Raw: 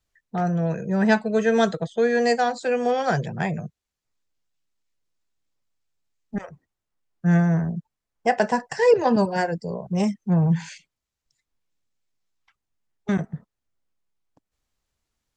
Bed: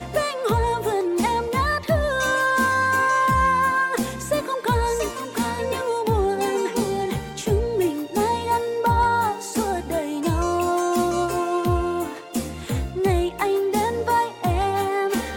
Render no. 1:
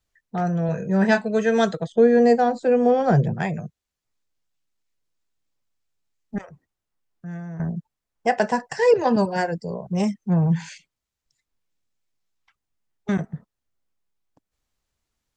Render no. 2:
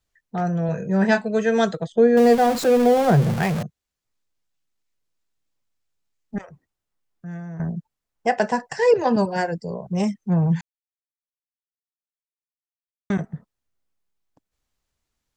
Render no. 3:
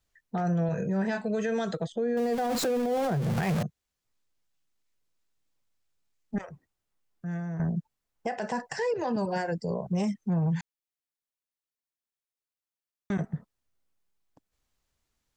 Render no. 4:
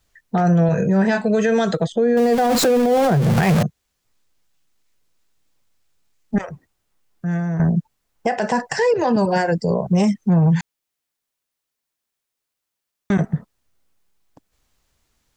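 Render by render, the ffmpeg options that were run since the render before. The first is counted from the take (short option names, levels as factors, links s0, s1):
-filter_complex "[0:a]asettb=1/sr,asplit=3[s0][s1][s2];[s0]atrim=end=0.664[s3];[s1]atrim=start=0.66:end=1.25,asetpts=PTS-STARTPTS,afade=t=in:d=0.004:c=qsin,afade=t=out:st=0.586:d=0.004:c=qsin,asplit=2[s4][s5];[s5]adelay=26,volume=0.473[s6];[s4][s6]amix=inputs=2:normalize=0,atrim=end_sample=26019[s7];[s2]atrim=start=1.246[s8];[s3][s7]acrossfade=d=0.004:c1=hsin:c2=qsin[s9];[s9][s8]acrossfade=d=0.004:c1=qsin:c2=hsin,asettb=1/sr,asplit=3[s10][s11][s12];[s10]atrim=end=1.924[s13];[s11]atrim=start=1.92:end=3.34,asetpts=PTS-STARTPTS,afade=t=in:d=0.004:c=qsin,afade=t=out:st=1.416:d=0.004:c=qsin,tiltshelf=f=910:g=9[s14];[s12]atrim=start=3.336[s15];[s13][s14]acrossfade=d=0.004:c1=hsin:c2=qsin[s16];[s16][s15]acrossfade=d=0.004:c1=qsin:c2=hsin,asettb=1/sr,asplit=3[s17][s18][s19];[s17]atrim=end=6.414[s20];[s18]atrim=start=6.41:end=7.6,asetpts=PTS-STARTPTS,afade=t=in:d=0.004:c=qsin,afade=t=out:st=1.186:d=0.004:c=qsin,acompressor=threshold=0.01:ratio=2.5:attack=3.2:release=140:knee=1:detection=peak[s21];[s19]atrim=start=7.596[s22];[s20][s21]acrossfade=d=0.004:c1=hsin:c2=qsin[s23];[s23][s22]acrossfade=d=0.004:c1=qsin:c2=hsin"
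-filter_complex "[0:a]asettb=1/sr,asplit=3[s0][s1][s2];[s0]atrim=end=2.174[s3];[s1]atrim=start=2.17:end=3.63,asetpts=PTS-STARTPTS,afade=t=in:d=0.004:c=qsin,afade=t=out:st=1.456:d=0.004:c=qsin,aeval=exprs='val(0)+0.5*0.0668*sgn(val(0))':c=same[s4];[s2]atrim=start=3.626[s5];[s3][s4]acrossfade=d=0.004:c1=hsin:c2=qsin[s6];[s6][s5]acrossfade=d=0.004:c1=qsin:c2=hsin,asplit=3[s7][s8][s9];[s7]atrim=end=10.61,asetpts=PTS-STARTPTS,afade=t=out:st=10.606:d=0.004:c=hsin[s10];[s8]atrim=start=10.61:end=13.1,asetpts=PTS-STARTPTS,volume=0[s11];[s9]atrim=start=13.1,asetpts=PTS-STARTPTS,afade=t=in:d=0.004:c=hsin[s12];[s10][s11][s12]concat=n=3:v=0:a=1"
-af "acompressor=threshold=0.1:ratio=6,alimiter=limit=0.0794:level=0:latency=1:release=53"
-af "volume=3.76"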